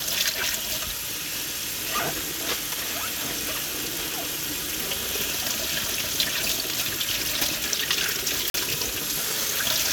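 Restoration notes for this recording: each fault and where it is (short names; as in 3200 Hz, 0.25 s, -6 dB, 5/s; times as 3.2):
8.5–8.54 gap 42 ms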